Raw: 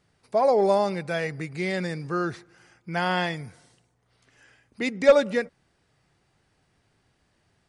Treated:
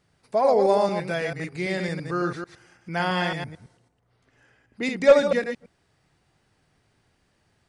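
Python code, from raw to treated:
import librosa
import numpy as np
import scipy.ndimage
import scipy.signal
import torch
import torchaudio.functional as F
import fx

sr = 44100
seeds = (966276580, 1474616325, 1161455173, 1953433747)

y = fx.reverse_delay(x, sr, ms=111, wet_db=-5.5)
y = fx.high_shelf(y, sr, hz=2100.0, db=-10.0, at=(3.44, 4.83))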